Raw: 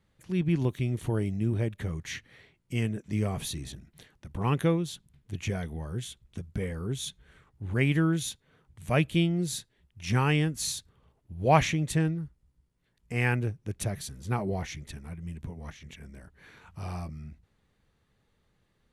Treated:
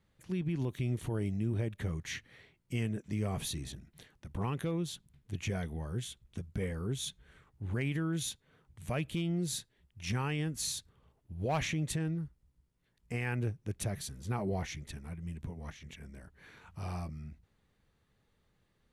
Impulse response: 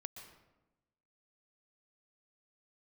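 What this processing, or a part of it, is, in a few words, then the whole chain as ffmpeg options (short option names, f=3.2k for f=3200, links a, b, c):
clipper into limiter: -af "asoftclip=type=hard:threshold=-15dB,alimiter=limit=-23dB:level=0:latency=1:release=74,volume=-2.5dB"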